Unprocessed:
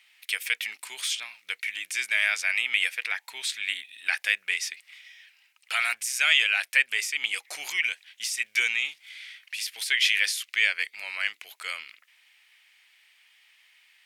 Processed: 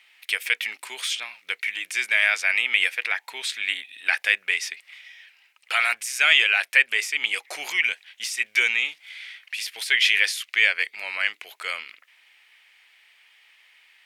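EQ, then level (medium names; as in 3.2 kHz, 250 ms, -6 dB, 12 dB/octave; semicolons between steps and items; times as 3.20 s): tone controls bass -11 dB, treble -5 dB; bass shelf 500 Hz +11.5 dB; +4.0 dB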